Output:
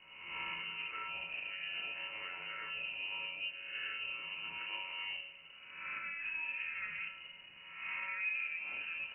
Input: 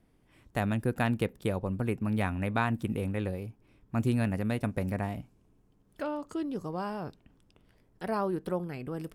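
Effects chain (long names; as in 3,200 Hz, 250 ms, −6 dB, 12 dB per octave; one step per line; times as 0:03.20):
peak hold with a rise ahead of every peak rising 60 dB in 0.96 s
0:08.08–0:08.80: parametric band 500 Hz +12.5 dB 0.64 octaves
downward compressor 6 to 1, threshold −32 dBFS, peak gain reduction 13.5 dB
brickwall limiter −31 dBFS, peak gain reduction 10.5 dB
background noise white −58 dBFS
high-frequency loss of the air 200 metres
tuned comb filter 390 Hz, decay 0.62 s, mix 90%
convolution reverb, pre-delay 3 ms, DRR 1.5 dB
voice inversion scrambler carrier 2,900 Hz
level +14.5 dB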